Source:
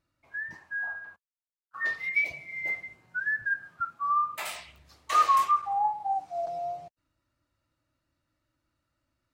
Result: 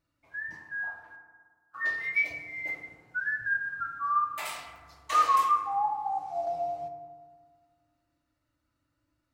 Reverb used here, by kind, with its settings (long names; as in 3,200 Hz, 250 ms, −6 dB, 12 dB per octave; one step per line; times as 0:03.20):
feedback delay network reverb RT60 1.6 s, low-frequency decay 1.2×, high-frequency decay 0.35×, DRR 3.5 dB
level −2 dB